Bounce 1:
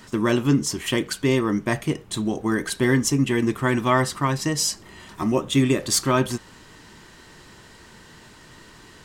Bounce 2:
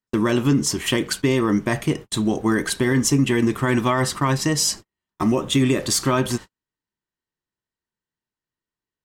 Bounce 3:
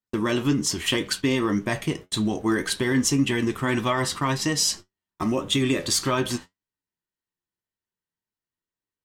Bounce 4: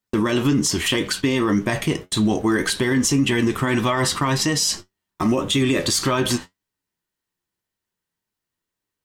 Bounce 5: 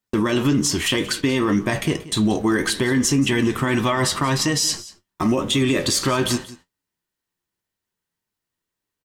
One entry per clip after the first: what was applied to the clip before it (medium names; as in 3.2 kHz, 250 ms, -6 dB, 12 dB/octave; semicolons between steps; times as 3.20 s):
gate -34 dBFS, range -49 dB; peak limiter -14 dBFS, peak gain reduction 7.5 dB; trim +4 dB
dynamic bell 3.5 kHz, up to +5 dB, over -36 dBFS, Q 0.86; flange 1.8 Hz, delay 9.5 ms, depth 2.7 ms, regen +60%
peak limiter -19 dBFS, peak gain reduction 8 dB; trim +8 dB
delay 181 ms -18 dB